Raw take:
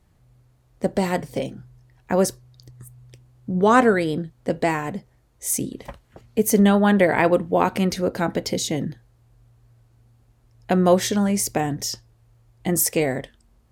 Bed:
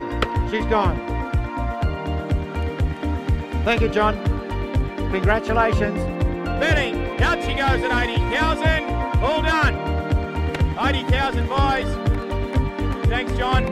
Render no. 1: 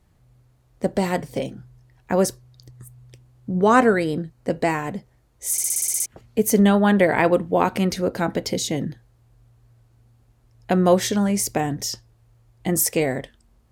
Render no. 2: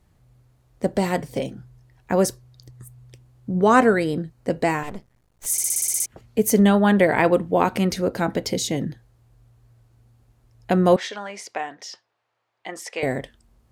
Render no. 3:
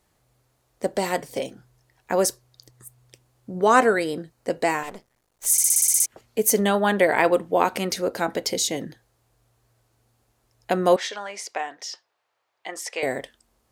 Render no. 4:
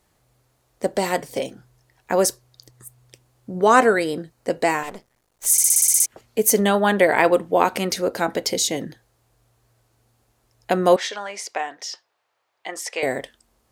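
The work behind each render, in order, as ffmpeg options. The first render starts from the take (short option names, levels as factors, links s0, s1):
-filter_complex "[0:a]asettb=1/sr,asplit=3[s0][s1][s2];[s0]atrim=end=3.514[s3];[s1]atrim=start=3.51:end=4.77,asetpts=PTS-STARTPTS,afade=t=in:d=0.004:c=qsin,afade=t=out:st=1.256:d=0.004:c=qsin,bandreject=f=3400:w=8.6[s4];[s2]atrim=start=4.766[s5];[s3][s4]acrossfade=d=0.004:c1=hsin:c2=qsin[s6];[s6][s5]acrossfade=d=0.004:c1=qsin:c2=hsin,asplit=10[s7][s8][s9][s10][s11][s12][s13][s14][s15][s16];[s7]atrim=end=5.582[s17];[s8]atrim=start=5.518:end=5.582[s18];[s9]atrim=start=5.518:end=5.582[s19];[s10]atrim=start=5.518:end=5.582[s20];[s11]atrim=start=5.518:end=5.582[s21];[s12]atrim=start=5.518:end=5.582[s22];[s13]atrim=start=5.518:end=5.582[s23];[s14]atrim=start=5.518:end=5.582[s24];[s15]atrim=start=5.518:end=5.582[s25];[s16]atrim=start=6.058[s26];[s17][s18]acrossfade=d=0.004:c1=hsin:c2=hsin[s27];[s27][s19]acrossfade=d=0.004:c1=hsin:c2=hsin[s28];[s28][s20]acrossfade=d=0.004:c1=hsin:c2=hsin[s29];[s29][s21]acrossfade=d=0.004:c1=hsin:c2=hsin[s30];[s30][s22]acrossfade=d=0.004:c1=hsin:c2=hsin[s31];[s31][s23]acrossfade=d=0.004:c1=hsin:c2=hsin[s32];[s32][s24]acrossfade=d=0.004:c1=hsin:c2=hsin[s33];[s33][s25]acrossfade=d=0.004:c1=hsin:c2=hsin[s34];[s34][s26]acrossfade=d=0.004:c1=hsin:c2=hsin"
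-filter_complex "[0:a]asettb=1/sr,asplit=3[s0][s1][s2];[s0]atrim=end=4.834[s3];[s1]atrim=start=4.83:end=5.46,asetpts=PTS-STARTPTS,afade=t=in:d=0.004:c=qsin,afade=t=out:st=0.626:d=0.004:c=qsin,aeval=exprs='max(val(0),0)':c=same[s4];[s2]atrim=start=5.456[s5];[s3][s4]acrossfade=d=0.004:c1=hsin:c2=qsin[s6];[s6][s5]acrossfade=d=0.004:c1=qsin:c2=hsin,asettb=1/sr,asplit=3[s7][s8][s9];[s7]atrim=end=10.964[s10];[s8]atrim=start=10.96:end=13.03,asetpts=PTS-STARTPTS,afade=t=in:d=0.004:c=qsin,afade=t=out:st=2.066:d=0.004:c=qsin,highpass=760,lowpass=3400[s11];[s9]atrim=start=13.026[s12];[s10][s11]acrossfade=d=0.004:c1=hsin:c2=qsin[s13];[s13][s12]acrossfade=d=0.004:c1=qsin:c2=hsin"
-af "bass=f=250:g=-13,treble=f=4000:g=4"
-af "volume=1.33,alimiter=limit=0.891:level=0:latency=1"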